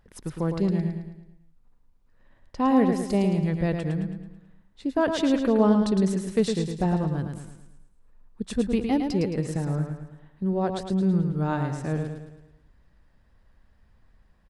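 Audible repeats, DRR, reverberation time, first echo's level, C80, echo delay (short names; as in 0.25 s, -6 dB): 5, none, none, -6.0 dB, none, 0.109 s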